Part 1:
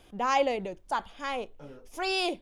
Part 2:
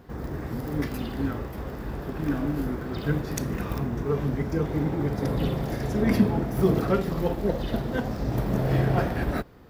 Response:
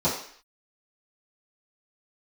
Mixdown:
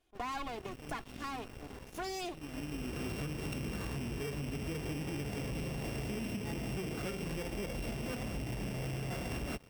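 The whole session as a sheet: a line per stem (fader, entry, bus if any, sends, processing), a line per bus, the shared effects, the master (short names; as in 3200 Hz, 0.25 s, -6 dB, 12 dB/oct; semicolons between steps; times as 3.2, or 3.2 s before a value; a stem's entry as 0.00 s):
-12.0 dB, 0.00 s, no send, minimum comb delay 2.8 ms
-5.5 dB, 0.15 s, no send, sample sorter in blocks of 16 samples; compressor, threshold -27 dBFS, peak gain reduction 12.5 dB; auto duck -18 dB, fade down 0.25 s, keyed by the first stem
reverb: off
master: sample leveller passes 3; compressor 6:1, threshold -37 dBFS, peak gain reduction 13 dB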